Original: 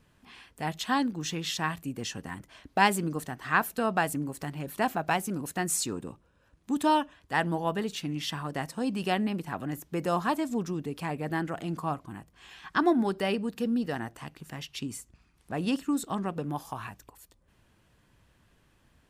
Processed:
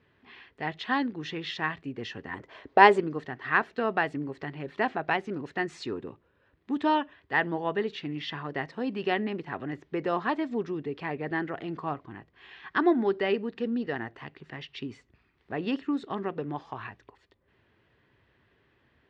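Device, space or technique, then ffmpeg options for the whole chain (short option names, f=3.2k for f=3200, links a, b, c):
guitar cabinet: -filter_complex "[0:a]highpass=80,equalizer=f=180:t=q:w=4:g=-6,equalizer=f=400:t=q:w=4:g=8,equalizer=f=1.9k:t=q:w=4:g=7,lowpass=f=4k:w=0.5412,lowpass=f=4k:w=1.3066,asettb=1/sr,asplit=3[a][b][c];[a]atrim=end=2.334[d];[b]atrim=start=2.33:end=3,asetpts=PTS-STARTPTS,afade=t=in:d=0.004:c=qsin,afade=t=out:st=0.666:d=0.004:c=qsin,equalizer=f=500:t=o:w=1:g=9,equalizer=f=1k:t=o:w=1:g=6,equalizer=f=8k:t=o:w=1:g=10[e];[c]atrim=start=2.996[f];[d][e]acrossfade=d=0.004:c1=hsin:c2=qsin[g];[g][f]acrossfade=d=0.004:c1=qsin:c2=hsin,volume=-1.5dB"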